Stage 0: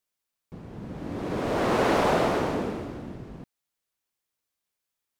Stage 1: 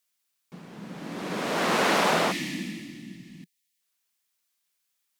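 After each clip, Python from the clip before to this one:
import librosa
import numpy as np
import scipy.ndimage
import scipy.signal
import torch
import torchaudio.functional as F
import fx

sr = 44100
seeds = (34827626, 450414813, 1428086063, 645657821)

y = fx.tilt_shelf(x, sr, db=-8.0, hz=870.0)
y = fx.spec_box(y, sr, start_s=2.32, length_s=1.48, low_hz=360.0, high_hz=1700.0, gain_db=-21)
y = fx.low_shelf_res(y, sr, hz=120.0, db=-13.0, q=3.0)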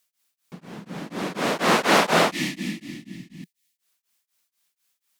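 y = x * np.abs(np.cos(np.pi * 4.1 * np.arange(len(x)) / sr))
y = y * 10.0 ** (7.0 / 20.0)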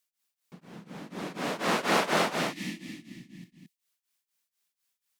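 y = x + 10.0 ** (-4.5 / 20.0) * np.pad(x, (int(221 * sr / 1000.0), 0))[:len(x)]
y = y * 10.0 ** (-8.5 / 20.0)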